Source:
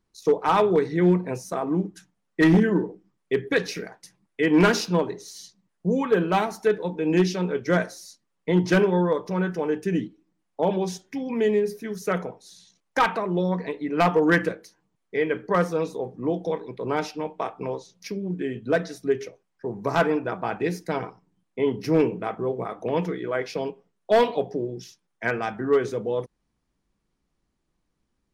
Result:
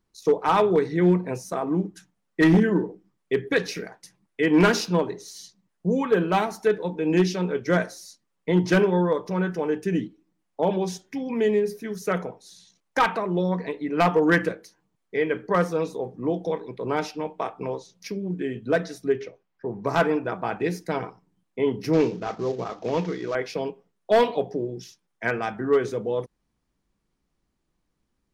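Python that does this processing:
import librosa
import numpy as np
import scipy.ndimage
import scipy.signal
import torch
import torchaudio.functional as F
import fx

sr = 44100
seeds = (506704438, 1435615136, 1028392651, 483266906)

y = fx.lowpass(x, sr, hz=4200.0, slope=12, at=(19.12, 19.86))
y = fx.cvsd(y, sr, bps=32000, at=(21.93, 23.35))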